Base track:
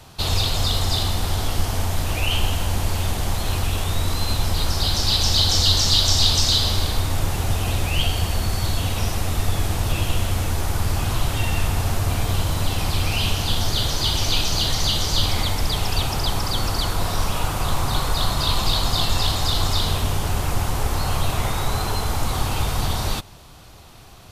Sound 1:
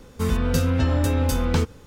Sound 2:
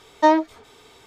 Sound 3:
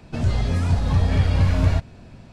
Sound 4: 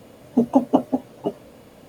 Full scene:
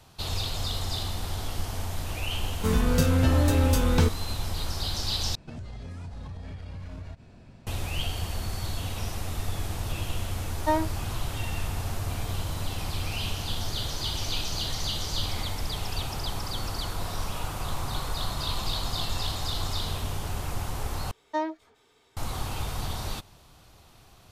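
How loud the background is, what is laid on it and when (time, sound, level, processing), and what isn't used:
base track -9.5 dB
2.44 add 1 -1 dB
5.35 replace with 3 -7 dB + compressor 12:1, threshold -28 dBFS
10.44 add 2 -9.5 dB
21.11 replace with 2 -13.5 dB + bell 1700 Hz +2.5 dB 0.21 oct
not used: 4

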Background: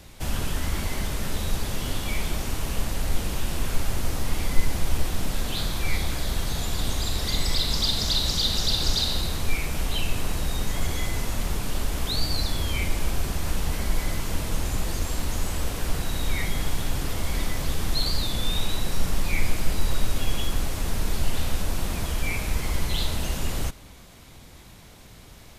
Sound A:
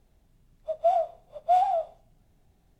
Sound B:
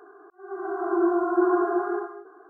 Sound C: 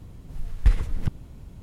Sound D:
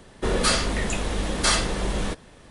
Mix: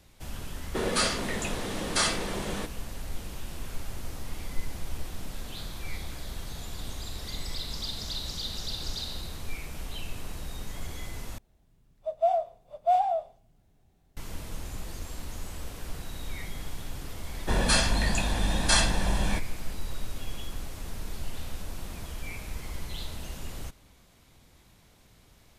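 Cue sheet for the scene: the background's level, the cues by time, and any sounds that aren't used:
background -11 dB
0.52 add D -4.5 dB + HPF 130 Hz
11.38 replace with A -1.5 dB
17.25 add D -3 dB + comb 1.2 ms, depth 56%
not used: B, C

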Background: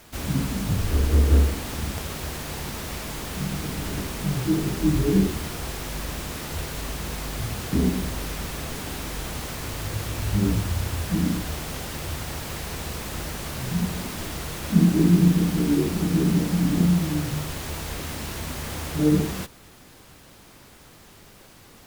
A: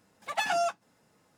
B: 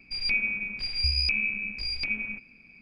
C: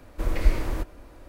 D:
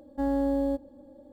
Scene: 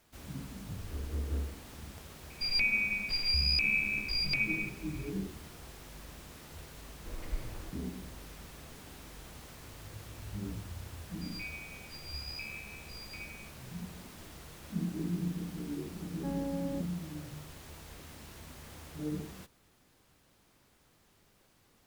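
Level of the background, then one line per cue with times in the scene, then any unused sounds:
background -17.5 dB
2.3 add B -0.5 dB + limiter -19.5 dBFS
6.87 add C -17 dB
11.1 add B -17.5 dB + spectral trails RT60 0.39 s
16.05 add D -11 dB
not used: A

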